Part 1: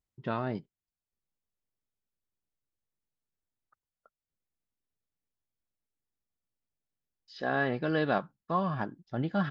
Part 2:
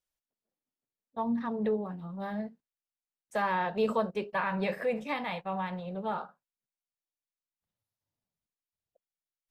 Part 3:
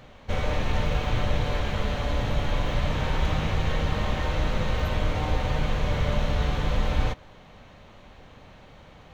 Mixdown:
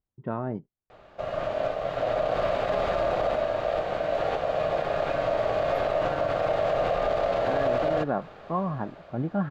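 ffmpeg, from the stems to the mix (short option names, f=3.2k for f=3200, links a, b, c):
-filter_complex "[0:a]lowpass=1.1k,volume=2.5dB[a];[1:a]highpass=350,acrossover=split=800[b][c];[b]aeval=exprs='val(0)*(1-0.5/2+0.5/2*cos(2*PI*9.7*n/s))':c=same[d];[c]aeval=exprs='val(0)*(1-0.5/2-0.5/2*cos(2*PI*9.7*n/s))':c=same[e];[d][e]amix=inputs=2:normalize=0,volume=-19dB,asplit=2[f][g];[2:a]highshelf=f=3k:g=-9.5,dynaudnorm=f=210:g=13:m=7dB,aeval=exprs='val(0)*sin(2*PI*620*n/s)':c=same,adelay=900,volume=0dB[h];[g]apad=whole_len=442364[i];[h][i]sidechaincompress=threshold=-53dB:ratio=8:attack=16:release=905[j];[a][f][j]amix=inputs=3:normalize=0,alimiter=limit=-16.5dB:level=0:latency=1:release=36"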